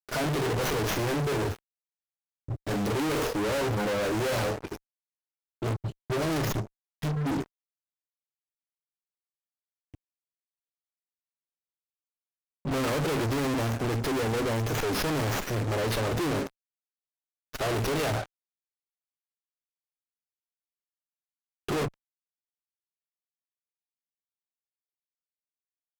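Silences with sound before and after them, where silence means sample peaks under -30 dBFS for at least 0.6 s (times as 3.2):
1.54–2.49
4.76–5.62
7.42–12.66
16.47–17.55
18.24–21.69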